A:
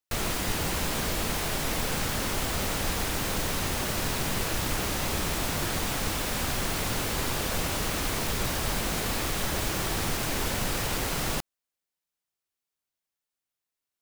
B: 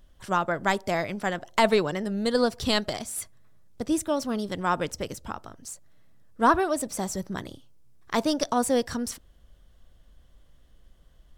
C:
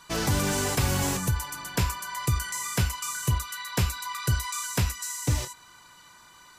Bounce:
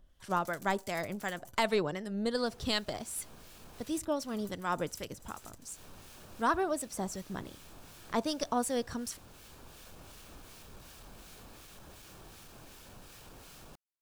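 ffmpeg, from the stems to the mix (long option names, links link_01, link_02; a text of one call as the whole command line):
ffmpeg -i stem1.wav -i stem2.wav -i stem3.wav -filter_complex "[0:a]bandreject=frequency=2000:width=6.6,asoftclip=type=tanh:threshold=-22.5dB,adelay=2350,volume=-11dB[link_01];[1:a]volume=-5dB,asplit=2[link_02][link_03];[2:a]aeval=exprs='0.188*(cos(1*acos(clip(val(0)/0.188,-1,1)))-cos(1*PI/2))+0.0531*(cos(3*acos(clip(val(0)/0.188,-1,1)))-cos(3*PI/2))':channel_layout=same,crystalizer=i=4:c=0,aeval=exprs='val(0)*pow(10,-30*if(lt(mod(12*n/s,1),2*abs(12)/1000),1-mod(12*n/s,1)/(2*abs(12)/1000),(mod(12*n/s,1)-2*abs(12)/1000)/(1-2*abs(12)/1000))/20)':channel_layout=same,adelay=200,volume=-3dB,asplit=3[link_04][link_05][link_06];[link_04]atrim=end=1.72,asetpts=PTS-STARTPTS,afade=type=out:start_time=1.716:duration=0.004:curve=hsin[link_07];[link_05]atrim=start=1.72:end=3.77,asetpts=PTS-STARTPTS,volume=0[link_08];[link_06]atrim=start=3.77,asetpts=PTS-STARTPTS,afade=type=in:duration=0.004:curve=hsin[link_09];[link_07][link_08][link_09]concat=n=3:v=0:a=1[link_10];[link_03]apad=whole_len=721577[link_11];[link_01][link_11]sidechaincompress=threshold=-40dB:ratio=6:attack=36:release=1230[link_12];[link_12][link_10]amix=inputs=2:normalize=0,acompressor=threshold=-48dB:ratio=6,volume=0dB[link_13];[link_02][link_13]amix=inputs=2:normalize=0,acrossover=split=1400[link_14][link_15];[link_14]aeval=exprs='val(0)*(1-0.5/2+0.5/2*cos(2*PI*2.7*n/s))':channel_layout=same[link_16];[link_15]aeval=exprs='val(0)*(1-0.5/2-0.5/2*cos(2*PI*2.7*n/s))':channel_layout=same[link_17];[link_16][link_17]amix=inputs=2:normalize=0" out.wav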